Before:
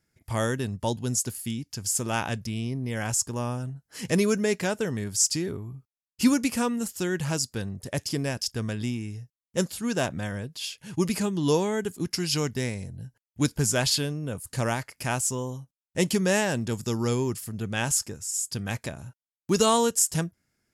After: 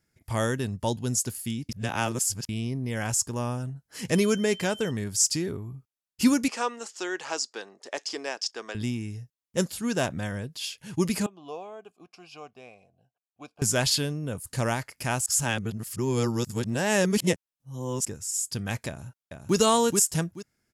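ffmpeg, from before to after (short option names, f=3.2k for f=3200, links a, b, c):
-filter_complex "[0:a]asettb=1/sr,asplit=3[a][b][c];[a]atrim=end=4.154[d];[b]atrim=start=4.15:end=4.91,asetpts=PTS-STARTPTS,afade=t=in:d=0.004:c=qsin,afade=t=out:st=0.756:d=0.004:c=qsin,aeval=exprs='val(0)+0.00794*sin(2*PI*3100*n/s)':c=same[e];[c]atrim=start=4.906[f];[d][e]acrossfade=d=0.004:c1=hsin:c2=qsin[g];[g][f]acrossfade=d=0.004:c1=qsin:c2=hsin,asettb=1/sr,asplit=3[h][i][j];[h]atrim=end=6.484[k];[i]atrim=start=6.48:end=8.75,asetpts=PTS-STARTPTS,afade=t=in:d=0.004:c=qsin,afade=t=out:st=2.266:d=0.004:c=qsin,highpass=f=380:w=0.5412,highpass=f=380:w=1.3066,equalizer=f=540:t=q:w=4:g=-3,equalizer=f=820:t=q:w=4:g=4,equalizer=f=1.2k:t=q:w=4:g=3,lowpass=f=7.1k:w=0.5412,lowpass=f=7.1k:w=1.3066[l];[j]atrim=start=8.746[m];[k][l]acrossfade=d=0.004:c1=hsin:c2=qsin[n];[n][m]acrossfade=d=0.004:c1=qsin:c2=hsin,asettb=1/sr,asplit=3[o][p][q];[o]atrim=end=11.264[r];[p]atrim=start=11.26:end=13.62,asetpts=PTS-STARTPTS,afade=t=in:d=0.004:c=qsin,afade=t=out:st=2.356:d=0.004:c=qsin,asplit=3[s][t][u];[s]bandpass=f=730:t=q:w=8,volume=0dB[v];[t]bandpass=f=1.09k:t=q:w=8,volume=-6dB[w];[u]bandpass=f=2.44k:t=q:w=8,volume=-9dB[x];[v][w][x]amix=inputs=3:normalize=0[y];[q]atrim=start=13.616[z];[r][y]acrossfade=d=0.004:c1=hsin:c2=qsin[aa];[aa][z]acrossfade=d=0.004:c1=qsin:c2=hsin,asplit=2[ab][ac];[ac]afade=t=in:st=18.88:d=0.01,afade=t=out:st=19.56:d=0.01,aecho=0:1:430|860|1290:0.595662|0.148916|0.0372289[ad];[ab][ad]amix=inputs=2:normalize=0,asplit=5[ae][af][ag][ah][ai];[ae]atrim=end=1.692[aj];[af]atrim=start=1.688:end=2.492,asetpts=PTS-STARTPTS,areverse[ak];[ag]atrim=start=2.488:end=15.262[al];[ah]atrim=start=15.258:end=18.052,asetpts=PTS-STARTPTS,areverse[am];[ai]atrim=start=18.048[an];[aj][ak]acrossfade=d=0.004:c1=hsin:c2=hsin[ao];[ao][al]acrossfade=d=0.004:c1=hsin:c2=hsin[ap];[ap][am]acrossfade=d=0.004:c1=hsin:c2=hsin[aq];[aq][an]acrossfade=d=0.004:c1=hsin:c2=hsin"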